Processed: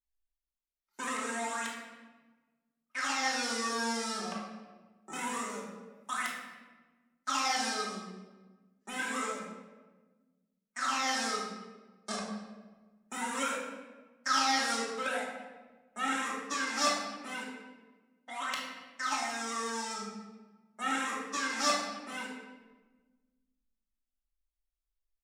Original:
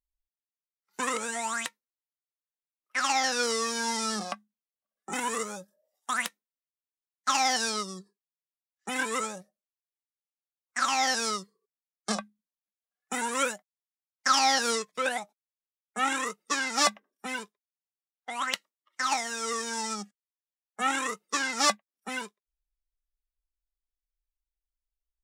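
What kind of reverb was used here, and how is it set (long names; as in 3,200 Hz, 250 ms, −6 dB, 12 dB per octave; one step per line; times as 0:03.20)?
rectangular room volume 950 cubic metres, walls mixed, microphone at 2.7 metres
level −10 dB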